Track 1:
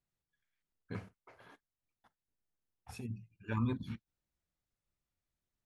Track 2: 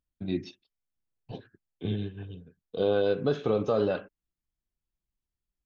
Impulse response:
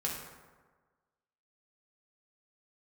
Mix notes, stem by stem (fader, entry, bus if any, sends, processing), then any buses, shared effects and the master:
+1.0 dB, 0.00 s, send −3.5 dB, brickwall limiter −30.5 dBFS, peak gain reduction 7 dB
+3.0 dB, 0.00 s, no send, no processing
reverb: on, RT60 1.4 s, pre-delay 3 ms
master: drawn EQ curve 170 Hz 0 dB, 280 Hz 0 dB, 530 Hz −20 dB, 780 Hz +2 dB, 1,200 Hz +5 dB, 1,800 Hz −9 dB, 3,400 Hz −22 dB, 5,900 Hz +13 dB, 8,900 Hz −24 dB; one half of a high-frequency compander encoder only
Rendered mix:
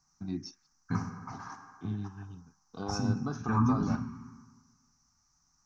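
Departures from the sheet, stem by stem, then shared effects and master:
stem 1 +1.0 dB → +7.5 dB
stem 2 +3.0 dB → −4.0 dB

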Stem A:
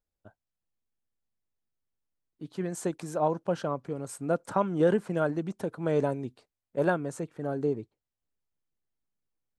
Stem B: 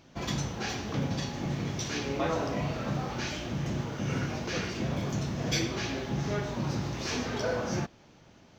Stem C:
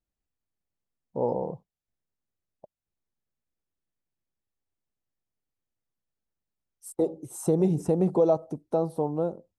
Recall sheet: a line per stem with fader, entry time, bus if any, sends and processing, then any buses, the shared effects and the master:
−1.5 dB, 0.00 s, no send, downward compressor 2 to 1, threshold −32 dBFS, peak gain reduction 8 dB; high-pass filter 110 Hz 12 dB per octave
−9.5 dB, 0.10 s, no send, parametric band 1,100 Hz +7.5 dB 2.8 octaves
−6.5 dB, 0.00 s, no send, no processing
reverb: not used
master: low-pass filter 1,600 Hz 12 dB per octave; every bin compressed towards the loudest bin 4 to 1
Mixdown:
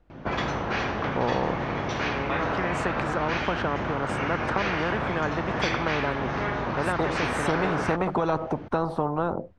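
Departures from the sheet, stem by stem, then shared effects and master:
stem B: missing parametric band 1,100 Hz +7.5 dB 2.8 octaves
stem C −6.5 dB → +2.0 dB

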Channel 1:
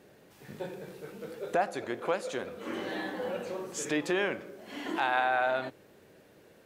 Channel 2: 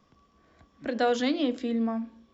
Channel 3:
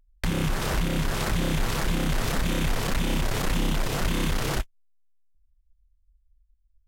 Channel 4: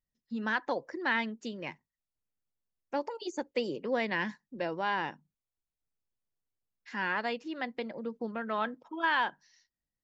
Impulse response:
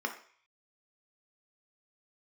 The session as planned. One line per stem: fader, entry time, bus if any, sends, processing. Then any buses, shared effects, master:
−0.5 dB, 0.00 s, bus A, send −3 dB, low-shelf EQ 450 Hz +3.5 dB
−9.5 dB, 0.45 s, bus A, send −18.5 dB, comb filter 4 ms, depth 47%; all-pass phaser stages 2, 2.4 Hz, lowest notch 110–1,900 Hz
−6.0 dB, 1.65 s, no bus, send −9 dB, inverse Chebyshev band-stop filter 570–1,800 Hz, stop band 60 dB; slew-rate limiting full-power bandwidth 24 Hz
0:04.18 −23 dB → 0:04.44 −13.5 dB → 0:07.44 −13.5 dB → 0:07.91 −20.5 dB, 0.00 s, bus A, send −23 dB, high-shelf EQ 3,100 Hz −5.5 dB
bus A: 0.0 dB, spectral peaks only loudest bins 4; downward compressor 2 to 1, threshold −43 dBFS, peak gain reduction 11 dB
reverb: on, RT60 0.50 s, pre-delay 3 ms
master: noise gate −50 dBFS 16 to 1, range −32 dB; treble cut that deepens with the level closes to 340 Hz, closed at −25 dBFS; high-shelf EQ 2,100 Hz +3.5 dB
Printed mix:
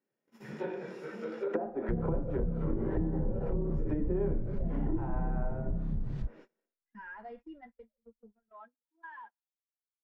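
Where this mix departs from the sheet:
stem 2: entry 0.45 s → 0.90 s
stem 4 −23.0 dB → −16.5 dB

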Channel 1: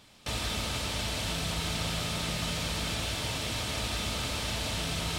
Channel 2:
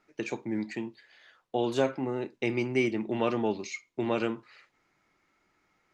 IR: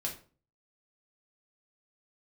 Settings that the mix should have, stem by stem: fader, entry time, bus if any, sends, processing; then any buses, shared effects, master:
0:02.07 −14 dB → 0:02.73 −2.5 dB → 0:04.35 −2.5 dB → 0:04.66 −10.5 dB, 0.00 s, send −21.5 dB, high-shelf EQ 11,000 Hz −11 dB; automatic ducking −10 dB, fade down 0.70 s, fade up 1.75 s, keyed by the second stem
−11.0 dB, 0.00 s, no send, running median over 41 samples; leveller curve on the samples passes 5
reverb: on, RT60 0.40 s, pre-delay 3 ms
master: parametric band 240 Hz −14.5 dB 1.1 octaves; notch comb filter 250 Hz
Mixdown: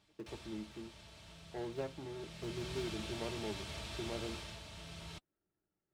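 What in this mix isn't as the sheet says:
stem 2: missing leveller curve on the samples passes 5
master: missing parametric band 240 Hz −14.5 dB 1.1 octaves

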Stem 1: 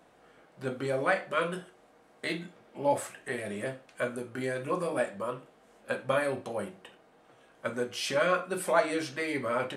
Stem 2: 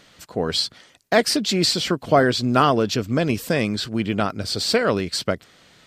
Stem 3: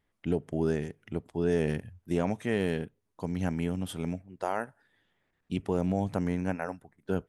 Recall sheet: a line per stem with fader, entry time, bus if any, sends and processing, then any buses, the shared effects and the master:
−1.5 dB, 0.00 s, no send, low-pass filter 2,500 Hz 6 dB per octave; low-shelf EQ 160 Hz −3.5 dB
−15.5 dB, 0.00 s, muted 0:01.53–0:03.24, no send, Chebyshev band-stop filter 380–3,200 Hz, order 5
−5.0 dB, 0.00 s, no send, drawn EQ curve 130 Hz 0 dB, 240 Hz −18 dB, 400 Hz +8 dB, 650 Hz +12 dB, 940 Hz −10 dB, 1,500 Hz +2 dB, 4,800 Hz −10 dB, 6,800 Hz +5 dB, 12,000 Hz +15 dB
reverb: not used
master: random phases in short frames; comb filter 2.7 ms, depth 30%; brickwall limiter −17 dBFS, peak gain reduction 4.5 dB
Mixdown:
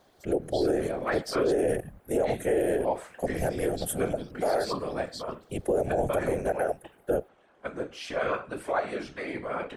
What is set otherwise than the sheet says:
stem 3 −5.0 dB → +2.5 dB
master: missing comb filter 2.7 ms, depth 30%

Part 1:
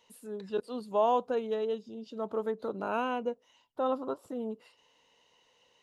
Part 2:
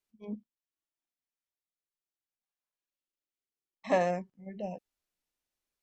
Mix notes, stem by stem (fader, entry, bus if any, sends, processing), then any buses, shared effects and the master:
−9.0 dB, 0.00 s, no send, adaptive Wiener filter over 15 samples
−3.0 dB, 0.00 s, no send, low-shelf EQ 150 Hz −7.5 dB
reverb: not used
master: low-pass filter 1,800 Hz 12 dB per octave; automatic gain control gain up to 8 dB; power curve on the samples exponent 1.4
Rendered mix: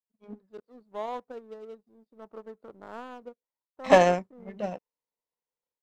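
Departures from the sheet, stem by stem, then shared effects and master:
stem 2 −3.0 dB → +5.5 dB
master: missing low-pass filter 1,800 Hz 12 dB per octave

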